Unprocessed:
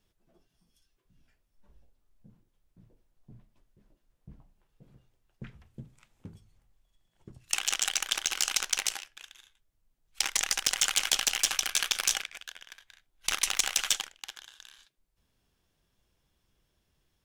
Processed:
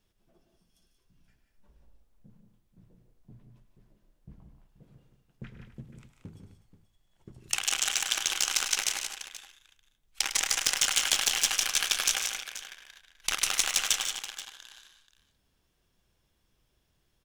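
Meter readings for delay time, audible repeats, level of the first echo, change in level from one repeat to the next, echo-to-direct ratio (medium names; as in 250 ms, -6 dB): 104 ms, 5, -11.5 dB, no regular repeats, -4.0 dB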